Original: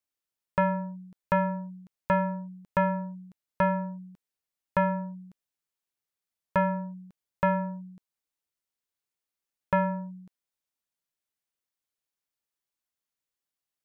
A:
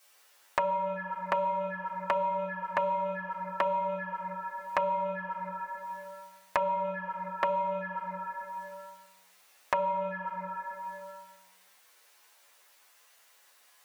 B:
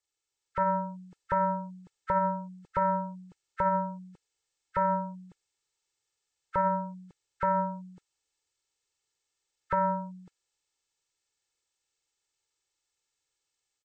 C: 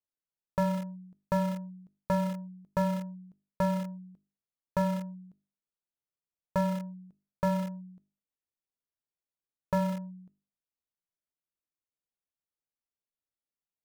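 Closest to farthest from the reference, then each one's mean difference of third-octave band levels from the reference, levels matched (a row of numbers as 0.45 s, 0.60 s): B, C, A; 2.5 dB, 6.0 dB, 10.0 dB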